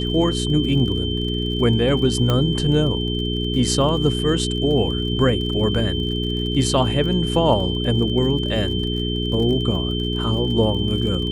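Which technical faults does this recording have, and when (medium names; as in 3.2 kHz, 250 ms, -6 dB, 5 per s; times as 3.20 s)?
crackle 41 per s -30 dBFS
hum 60 Hz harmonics 7 -24 dBFS
whine 3.1 kHz -27 dBFS
2.30 s: pop -8 dBFS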